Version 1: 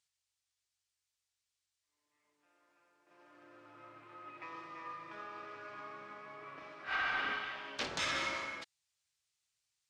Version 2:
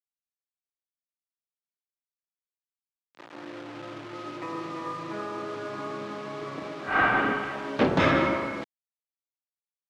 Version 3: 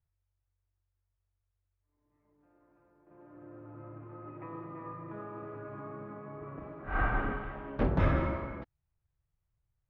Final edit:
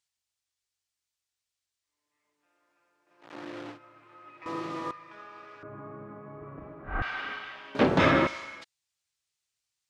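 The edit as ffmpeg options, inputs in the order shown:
-filter_complex "[1:a]asplit=3[s0][s1][s2];[0:a]asplit=5[s3][s4][s5][s6][s7];[s3]atrim=end=3.3[s8];[s0]atrim=start=3.2:end=3.79[s9];[s4]atrim=start=3.69:end=4.462[s10];[s1]atrim=start=4.458:end=4.912[s11];[s5]atrim=start=4.908:end=5.632[s12];[2:a]atrim=start=5.628:end=7.022[s13];[s6]atrim=start=7.018:end=7.752[s14];[s2]atrim=start=7.748:end=8.272[s15];[s7]atrim=start=8.268[s16];[s8][s9]acrossfade=d=0.1:c1=tri:c2=tri[s17];[s17][s10]acrossfade=d=0.1:c1=tri:c2=tri[s18];[s18][s11]acrossfade=d=0.004:c1=hsin:c2=hsin[s19];[s19][s12]acrossfade=d=0.004:c1=hsin:c2=hsin[s20];[s20][s13]acrossfade=d=0.004:c1=hsin:c2=hsin[s21];[s21][s14]acrossfade=d=0.004:c1=hsin:c2=hsin[s22];[s22][s15]acrossfade=d=0.004:c1=hsin:c2=hsin[s23];[s23][s16]acrossfade=d=0.004:c1=hsin:c2=hsin"

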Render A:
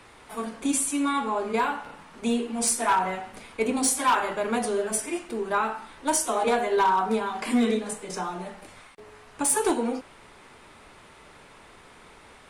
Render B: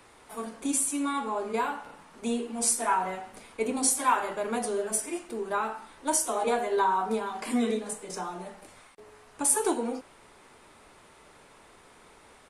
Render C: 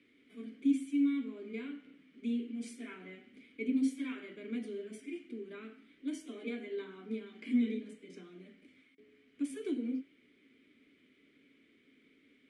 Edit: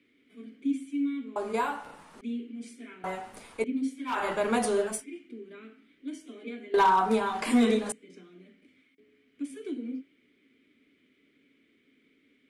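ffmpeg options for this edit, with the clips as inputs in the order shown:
-filter_complex "[1:a]asplit=2[s0][s1];[0:a]asplit=2[s2][s3];[2:a]asplit=5[s4][s5][s6][s7][s8];[s4]atrim=end=1.362[s9];[s0]atrim=start=1.358:end=2.212[s10];[s5]atrim=start=2.208:end=3.042[s11];[s1]atrim=start=3.038:end=3.642[s12];[s6]atrim=start=3.638:end=4.29[s13];[s2]atrim=start=4.05:end=5.05[s14];[s7]atrim=start=4.81:end=6.742[s15];[s3]atrim=start=6.738:end=7.922[s16];[s8]atrim=start=7.918[s17];[s9][s10]acrossfade=d=0.004:c1=hsin:c2=hsin[s18];[s18][s11]acrossfade=d=0.004:c1=hsin:c2=hsin[s19];[s19][s12]acrossfade=d=0.004:c1=hsin:c2=hsin[s20];[s20][s13]acrossfade=d=0.004:c1=hsin:c2=hsin[s21];[s21][s14]acrossfade=d=0.24:c1=tri:c2=tri[s22];[s22][s15]acrossfade=d=0.24:c1=tri:c2=tri[s23];[s23][s16]acrossfade=d=0.004:c1=hsin:c2=hsin[s24];[s24][s17]acrossfade=d=0.004:c1=hsin:c2=hsin"

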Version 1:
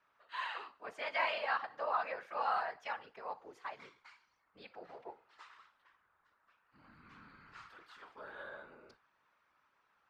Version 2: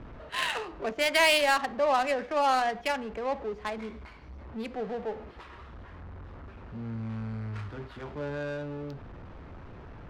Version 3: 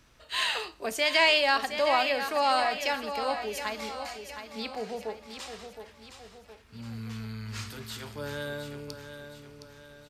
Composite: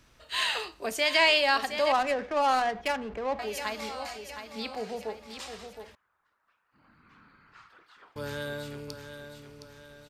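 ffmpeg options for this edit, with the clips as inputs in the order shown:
-filter_complex "[2:a]asplit=3[s0][s1][s2];[s0]atrim=end=1.922[s3];[1:a]atrim=start=1.918:end=3.392[s4];[s1]atrim=start=3.388:end=5.952[s5];[0:a]atrim=start=5.948:end=8.162[s6];[s2]atrim=start=8.158[s7];[s3][s4]acrossfade=d=0.004:c1=hsin:c2=hsin[s8];[s8][s5]acrossfade=d=0.004:c1=hsin:c2=hsin[s9];[s9][s6]acrossfade=d=0.004:c1=hsin:c2=hsin[s10];[s10][s7]acrossfade=d=0.004:c1=hsin:c2=hsin"

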